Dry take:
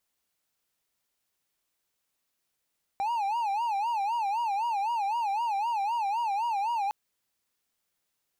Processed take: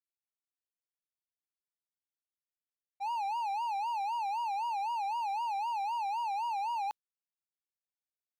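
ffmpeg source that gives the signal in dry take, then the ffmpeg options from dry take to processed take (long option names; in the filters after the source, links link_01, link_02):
-f lavfi -i "aevalsrc='0.0631*(1-4*abs(mod((869.5*t-86.5/(2*PI*3.9)*sin(2*PI*3.9*t))+0.25,1)-0.5))':duration=3.91:sample_rate=44100"
-af "agate=range=-33dB:threshold=-24dB:ratio=3:detection=peak,equalizer=frequency=3900:width_type=o:width=0.58:gain=3.5"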